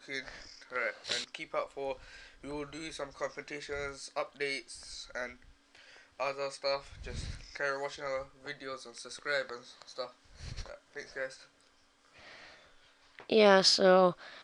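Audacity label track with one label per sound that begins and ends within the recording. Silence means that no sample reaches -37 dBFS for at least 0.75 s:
6.200000	11.270000	sound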